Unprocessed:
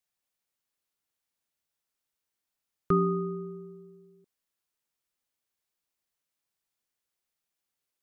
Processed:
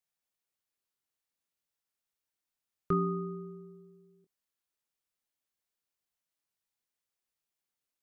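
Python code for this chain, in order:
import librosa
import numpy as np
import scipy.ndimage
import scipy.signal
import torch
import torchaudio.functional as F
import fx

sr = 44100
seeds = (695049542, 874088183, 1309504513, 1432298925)

y = fx.doubler(x, sr, ms=24.0, db=-10.0)
y = y * librosa.db_to_amplitude(-4.5)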